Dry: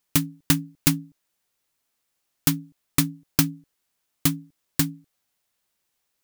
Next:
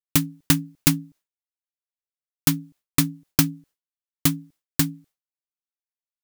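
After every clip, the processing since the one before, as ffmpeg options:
-af "agate=range=0.0224:threshold=0.00398:ratio=3:detection=peak,volume=1.19"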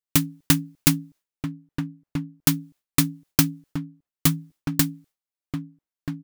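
-filter_complex "[0:a]asplit=2[s0][s1];[s1]adelay=1283,volume=0.447,highshelf=f=4000:g=-28.9[s2];[s0][s2]amix=inputs=2:normalize=0"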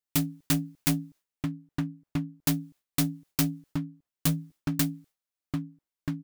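-af "asoftclip=type=tanh:threshold=0.112"

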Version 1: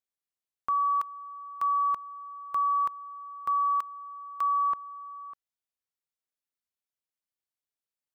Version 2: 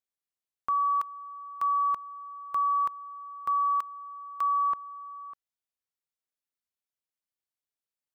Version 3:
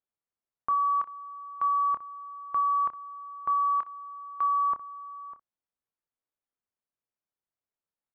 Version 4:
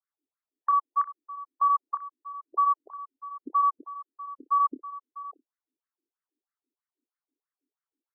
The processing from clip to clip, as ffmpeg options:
-af anull
-af "lowpass=1400,aecho=1:1:27|60:0.335|0.141,volume=1.33"
-af "lowshelf=f=390:t=q:w=3:g=12.5,afftfilt=real='re*between(b*sr/1024,330*pow(1600/330,0.5+0.5*sin(2*PI*3.1*pts/sr))/1.41,330*pow(1600/330,0.5+0.5*sin(2*PI*3.1*pts/sr))*1.41)':imag='im*between(b*sr/1024,330*pow(1600/330,0.5+0.5*sin(2*PI*3.1*pts/sr))/1.41,330*pow(1600/330,0.5+0.5*sin(2*PI*3.1*pts/sr))*1.41)':win_size=1024:overlap=0.75,volume=2"

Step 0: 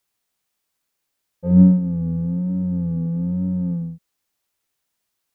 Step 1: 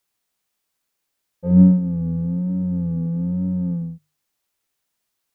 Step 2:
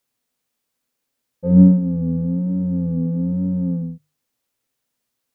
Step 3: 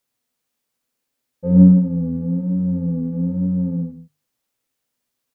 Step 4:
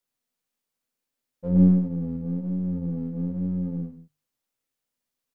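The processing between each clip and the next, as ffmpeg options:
-af "bandreject=f=50:t=h:w=6,bandreject=f=100:t=h:w=6,bandreject=f=150:t=h:w=6"
-af "equalizer=f=125:t=o:w=0.33:g=8,equalizer=f=250:t=o:w=0.33:g=11,equalizer=f=500:t=o:w=0.33:g=7,volume=0.891"
-af "aecho=1:1:99:0.398,volume=0.891"
-af "aeval=exprs='if(lt(val(0),0),0.708*val(0),val(0))':c=same,volume=0.501"

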